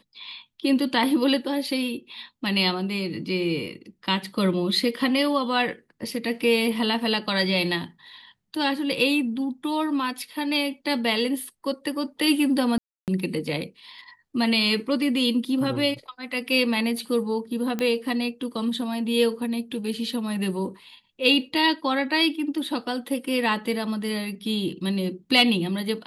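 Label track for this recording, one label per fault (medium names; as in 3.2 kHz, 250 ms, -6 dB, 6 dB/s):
12.780000	13.080000	dropout 298 ms
17.790000	17.790000	pop -14 dBFS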